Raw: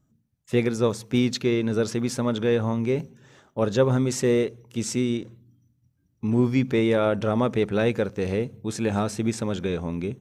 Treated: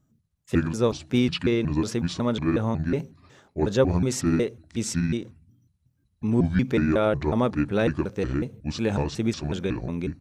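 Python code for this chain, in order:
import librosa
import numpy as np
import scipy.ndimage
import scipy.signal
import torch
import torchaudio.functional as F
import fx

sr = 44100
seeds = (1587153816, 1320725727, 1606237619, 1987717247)

y = fx.pitch_trill(x, sr, semitones=-6.5, every_ms=183)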